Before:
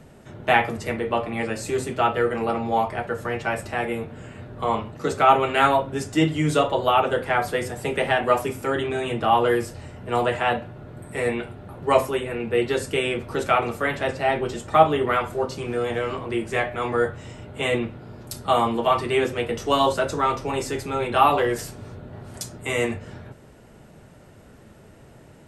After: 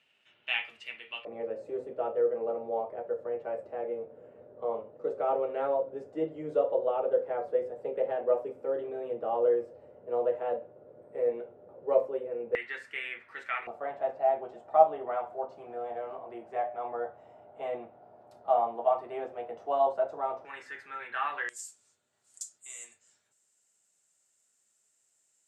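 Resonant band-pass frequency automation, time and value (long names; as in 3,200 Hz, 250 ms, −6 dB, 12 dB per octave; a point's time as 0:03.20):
resonant band-pass, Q 5.7
2,800 Hz
from 0:01.25 520 Hz
from 0:12.55 1,900 Hz
from 0:13.67 700 Hz
from 0:20.45 1,700 Hz
from 0:21.49 7,400 Hz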